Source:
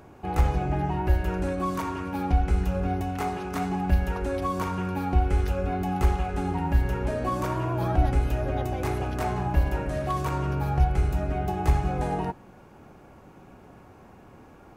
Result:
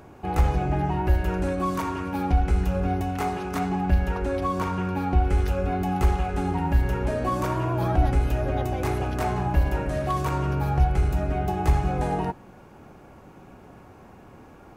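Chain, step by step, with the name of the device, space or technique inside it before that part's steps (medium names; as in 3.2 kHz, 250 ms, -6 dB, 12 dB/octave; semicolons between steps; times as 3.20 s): parallel distortion (in parallel at -11 dB: hard clipper -21.5 dBFS, distortion -10 dB); 3.59–5.25 s: on the sum: treble shelf 7 kHz -7 dB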